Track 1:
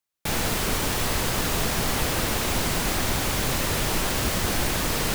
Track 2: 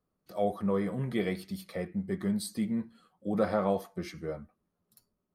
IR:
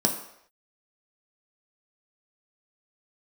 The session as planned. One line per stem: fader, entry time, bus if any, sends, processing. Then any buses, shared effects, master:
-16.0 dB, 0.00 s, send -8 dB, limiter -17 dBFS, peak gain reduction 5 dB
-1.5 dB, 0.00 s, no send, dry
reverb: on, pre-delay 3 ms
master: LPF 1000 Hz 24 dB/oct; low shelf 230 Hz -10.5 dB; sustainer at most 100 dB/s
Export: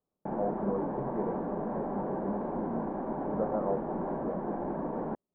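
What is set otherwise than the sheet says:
stem 1 -16.0 dB -> -9.0 dB; master: missing sustainer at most 100 dB/s

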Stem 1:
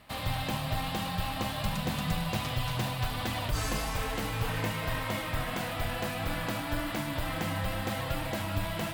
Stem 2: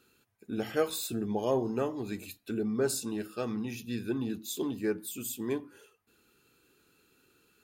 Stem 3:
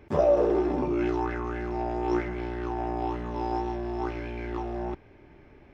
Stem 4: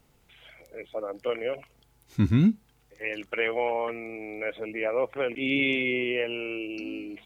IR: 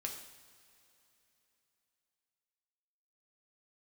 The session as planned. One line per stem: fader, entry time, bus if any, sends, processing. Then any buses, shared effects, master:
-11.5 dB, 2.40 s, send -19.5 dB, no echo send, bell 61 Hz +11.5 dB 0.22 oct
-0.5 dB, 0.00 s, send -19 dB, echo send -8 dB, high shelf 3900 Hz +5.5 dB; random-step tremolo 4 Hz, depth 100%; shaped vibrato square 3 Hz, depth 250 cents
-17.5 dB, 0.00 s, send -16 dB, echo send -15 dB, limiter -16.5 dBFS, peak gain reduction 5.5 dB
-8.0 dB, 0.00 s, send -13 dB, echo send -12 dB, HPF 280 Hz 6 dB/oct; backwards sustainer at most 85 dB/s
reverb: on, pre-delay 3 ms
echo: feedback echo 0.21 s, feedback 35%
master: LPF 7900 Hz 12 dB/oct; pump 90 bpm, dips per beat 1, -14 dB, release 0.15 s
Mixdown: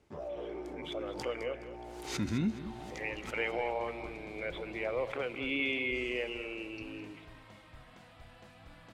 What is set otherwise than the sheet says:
stem 1 -11.5 dB -> -22.5 dB; stem 2: muted; master: missing pump 90 bpm, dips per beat 1, -14 dB, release 0.15 s

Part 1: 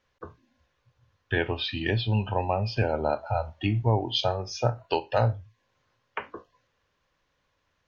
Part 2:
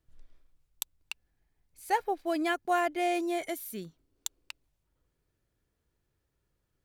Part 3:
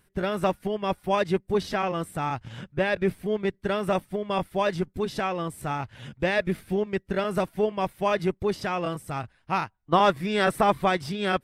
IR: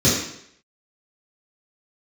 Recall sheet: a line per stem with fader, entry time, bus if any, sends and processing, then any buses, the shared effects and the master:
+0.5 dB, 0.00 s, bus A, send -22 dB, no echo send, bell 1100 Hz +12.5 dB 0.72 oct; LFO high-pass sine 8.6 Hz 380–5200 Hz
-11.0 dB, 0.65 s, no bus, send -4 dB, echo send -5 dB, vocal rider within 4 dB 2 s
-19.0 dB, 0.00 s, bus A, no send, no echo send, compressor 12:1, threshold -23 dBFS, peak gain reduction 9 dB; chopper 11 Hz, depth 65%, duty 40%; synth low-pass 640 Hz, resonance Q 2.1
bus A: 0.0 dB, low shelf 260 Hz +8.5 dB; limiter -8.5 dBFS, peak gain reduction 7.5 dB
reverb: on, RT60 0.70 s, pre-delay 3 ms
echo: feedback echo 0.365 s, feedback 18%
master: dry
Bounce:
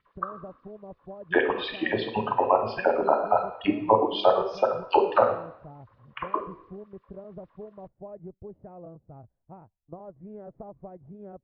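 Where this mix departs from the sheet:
stem 2: muted; stem 3: missing chopper 11 Hz, depth 65%, duty 40%; master: extra air absorption 400 m

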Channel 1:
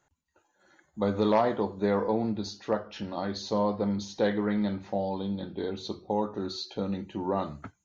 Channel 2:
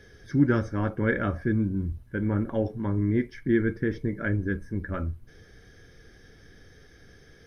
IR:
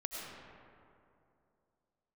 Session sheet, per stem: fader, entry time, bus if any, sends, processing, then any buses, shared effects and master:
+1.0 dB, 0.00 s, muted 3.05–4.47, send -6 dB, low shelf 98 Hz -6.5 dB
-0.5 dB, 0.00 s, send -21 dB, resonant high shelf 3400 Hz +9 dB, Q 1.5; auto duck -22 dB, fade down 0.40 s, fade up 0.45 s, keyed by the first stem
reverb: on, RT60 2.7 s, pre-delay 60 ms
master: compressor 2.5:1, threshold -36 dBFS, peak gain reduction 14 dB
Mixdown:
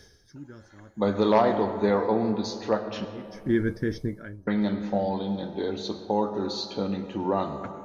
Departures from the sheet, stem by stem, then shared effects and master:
stem 2: send off; master: missing compressor 2.5:1, threshold -36 dBFS, peak gain reduction 14 dB

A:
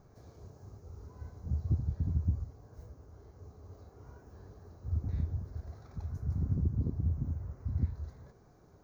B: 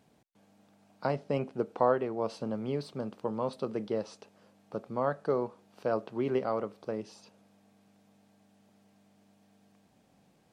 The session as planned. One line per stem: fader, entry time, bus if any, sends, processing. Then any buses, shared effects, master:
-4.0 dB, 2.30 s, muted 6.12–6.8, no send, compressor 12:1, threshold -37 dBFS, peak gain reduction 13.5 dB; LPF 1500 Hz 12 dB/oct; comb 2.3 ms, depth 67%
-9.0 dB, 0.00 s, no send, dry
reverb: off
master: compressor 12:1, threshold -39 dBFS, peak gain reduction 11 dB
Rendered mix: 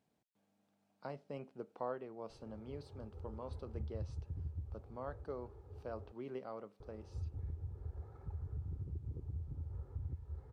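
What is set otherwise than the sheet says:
stem B -9.0 dB -> -15.0 dB; master: missing compressor 12:1, threshold -39 dBFS, peak gain reduction 11 dB

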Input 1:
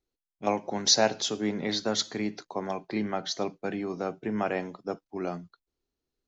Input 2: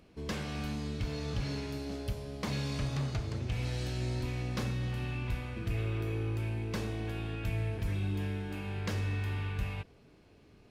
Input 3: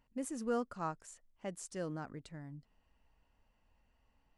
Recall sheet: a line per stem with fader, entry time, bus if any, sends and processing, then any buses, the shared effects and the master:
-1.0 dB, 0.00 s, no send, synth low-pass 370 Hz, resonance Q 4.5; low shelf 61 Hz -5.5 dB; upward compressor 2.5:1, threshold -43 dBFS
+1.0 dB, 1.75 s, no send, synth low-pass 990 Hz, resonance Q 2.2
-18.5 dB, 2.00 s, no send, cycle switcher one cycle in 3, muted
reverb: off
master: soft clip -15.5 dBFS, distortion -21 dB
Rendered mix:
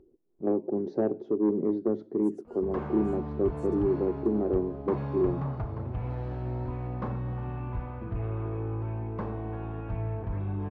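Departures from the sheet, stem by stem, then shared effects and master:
stem 2: entry 1.75 s -> 2.45 s; stem 3: missing cycle switcher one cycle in 3, muted

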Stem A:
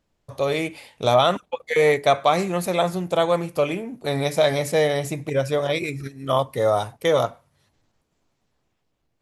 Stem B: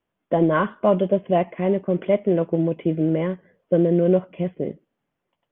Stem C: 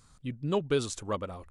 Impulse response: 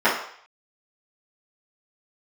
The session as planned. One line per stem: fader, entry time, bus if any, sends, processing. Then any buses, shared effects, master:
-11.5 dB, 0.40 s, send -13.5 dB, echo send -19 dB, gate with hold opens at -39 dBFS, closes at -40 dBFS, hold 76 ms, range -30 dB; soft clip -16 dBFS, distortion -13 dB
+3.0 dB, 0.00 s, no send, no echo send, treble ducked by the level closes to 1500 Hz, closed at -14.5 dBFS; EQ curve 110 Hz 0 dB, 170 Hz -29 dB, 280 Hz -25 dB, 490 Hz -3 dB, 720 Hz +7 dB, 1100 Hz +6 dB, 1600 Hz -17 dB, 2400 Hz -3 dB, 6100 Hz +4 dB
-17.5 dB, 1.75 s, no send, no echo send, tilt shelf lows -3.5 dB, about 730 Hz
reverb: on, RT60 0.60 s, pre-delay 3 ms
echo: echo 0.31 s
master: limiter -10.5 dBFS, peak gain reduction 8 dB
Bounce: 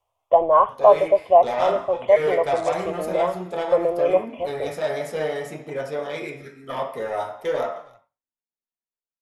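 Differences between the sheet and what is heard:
stem C -17.5 dB -> -9.5 dB; master: missing limiter -10.5 dBFS, peak gain reduction 8 dB

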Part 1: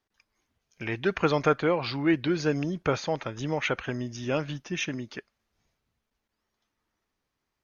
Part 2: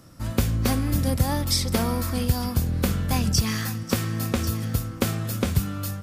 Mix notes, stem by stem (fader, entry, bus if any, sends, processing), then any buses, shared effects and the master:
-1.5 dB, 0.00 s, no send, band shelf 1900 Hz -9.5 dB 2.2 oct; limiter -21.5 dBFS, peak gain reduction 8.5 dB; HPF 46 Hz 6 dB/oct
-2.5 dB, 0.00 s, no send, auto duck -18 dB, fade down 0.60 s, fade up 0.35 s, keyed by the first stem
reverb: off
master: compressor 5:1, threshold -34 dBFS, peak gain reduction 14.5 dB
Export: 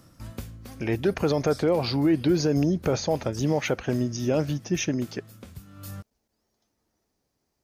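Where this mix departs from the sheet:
stem 1 -1.5 dB -> +7.5 dB; master: missing compressor 5:1, threshold -34 dBFS, peak gain reduction 14.5 dB

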